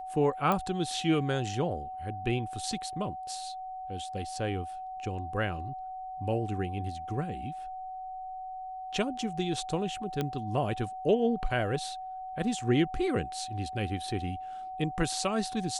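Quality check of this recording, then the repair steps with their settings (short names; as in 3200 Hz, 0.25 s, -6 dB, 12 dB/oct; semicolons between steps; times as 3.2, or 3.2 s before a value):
tone 750 Hz -37 dBFS
0.52 pop -15 dBFS
10.21 pop -17 dBFS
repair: de-click; notch 750 Hz, Q 30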